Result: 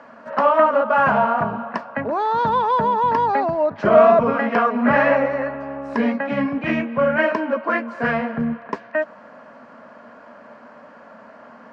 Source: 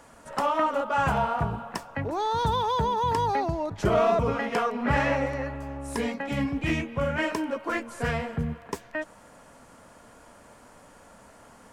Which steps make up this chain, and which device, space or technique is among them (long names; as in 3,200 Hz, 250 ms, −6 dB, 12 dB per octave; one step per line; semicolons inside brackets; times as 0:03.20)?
kitchen radio (loudspeaker in its box 190–4,100 Hz, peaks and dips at 230 Hz +10 dB, 340 Hz −3 dB, 610 Hz +9 dB, 1,100 Hz +6 dB, 1,600 Hz +7 dB, 3,500 Hz −8 dB)
level +4 dB